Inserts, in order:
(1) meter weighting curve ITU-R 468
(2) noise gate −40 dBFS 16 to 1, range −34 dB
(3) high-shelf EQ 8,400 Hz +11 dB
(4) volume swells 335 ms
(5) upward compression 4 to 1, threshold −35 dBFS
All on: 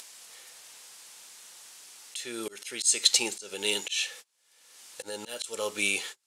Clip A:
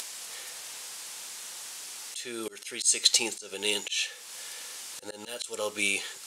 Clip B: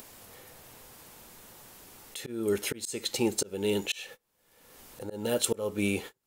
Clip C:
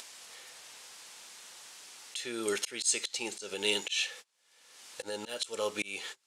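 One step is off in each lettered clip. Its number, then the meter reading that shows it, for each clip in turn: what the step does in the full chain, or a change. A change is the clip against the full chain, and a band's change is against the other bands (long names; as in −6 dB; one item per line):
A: 2, change in momentary loudness spread −8 LU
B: 1, 250 Hz band +15.5 dB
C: 3, 8 kHz band −5.0 dB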